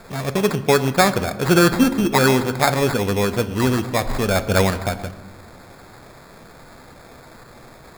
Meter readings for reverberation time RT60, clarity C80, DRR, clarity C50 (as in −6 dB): 1.4 s, 15.0 dB, 11.0 dB, 13.5 dB